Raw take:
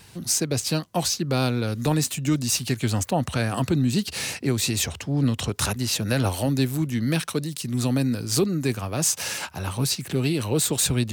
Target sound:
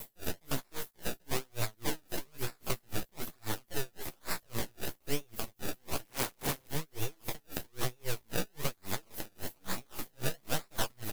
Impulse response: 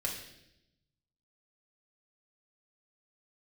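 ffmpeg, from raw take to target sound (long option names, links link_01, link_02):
-filter_complex "[0:a]asplit=2[link_01][link_02];[link_02]acompressor=threshold=-29dB:ratio=6,volume=0.5dB[link_03];[link_01][link_03]amix=inputs=2:normalize=0,acrusher=samples=28:mix=1:aa=0.000001:lfo=1:lforange=28:lforate=1.1,alimiter=limit=-16.5dB:level=0:latency=1:release=463,aeval=exprs='val(0)+0.00282*sin(2*PI*12000*n/s)':channel_layout=same,asplit=2[link_04][link_05];[link_05]aecho=0:1:290:0.119[link_06];[link_04][link_06]amix=inputs=2:normalize=0,aeval=exprs='abs(val(0))':channel_layout=same,flanger=delay=8.9:depth=8.7:regen=21:speed=0.55:shape=sinusoidal,acrusher=bits=7:mix=0:aa=0.000001,highshelf=frequency=2300:gain=10,asettb=1/sr,asplit=3[link_07][link_08][link_09];[link_07]atrim=end=6.054[link_10];[link_08]atrim=start=6.05:end=6.68,asetpts=PTS-STARTPTS,afade=type=in:duration=0.004:curve=qsin,afade=type=out:start_time=0.626:duration=0.004:curve=qsin,aeval=exprs='(mod(15*val(0)+1,2)-1)/15':channel_layout=same[link_11];[link_09]atrim=start=6.676[link_12];[link_10][link_11]acrossfade=duration=0.004:curve1=hsin:curve2=qsin[link_13];[link_13][link_12]acrossfade=duration=0.004:curve1=qsin:curve2=hsin,aeval=exprs='val(0)*pow(10,-38*(0.5-0.5*cos(2*PI*3.7*n/s))/20)':channel_layout=same,volume=-1dB"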